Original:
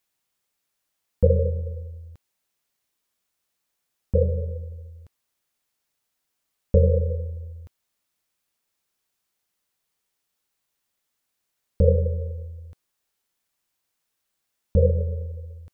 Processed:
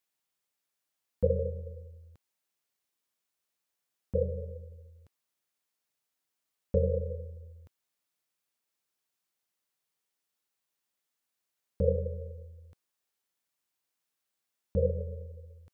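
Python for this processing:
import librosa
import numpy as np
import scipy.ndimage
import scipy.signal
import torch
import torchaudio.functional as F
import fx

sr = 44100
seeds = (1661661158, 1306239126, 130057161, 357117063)

y = fx.highpass(x, sr, hz=130.0, slope=6)
y = y * 10.0 ** (-6.5 / 20.0)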